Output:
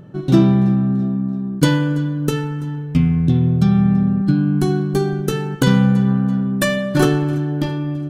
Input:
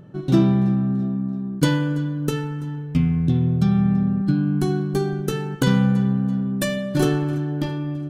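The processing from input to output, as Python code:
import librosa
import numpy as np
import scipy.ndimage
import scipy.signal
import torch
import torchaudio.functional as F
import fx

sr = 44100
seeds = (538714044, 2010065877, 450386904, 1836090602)

y = fx.dynamic_eq(x, sr, hz=1300.0, q=0.93, threshold_db=-39.0, ratio=4.0, max_db=6, at=(6.06, 7.06))
y = F.gain(torch.from_numpy(y), 4.0).numpy()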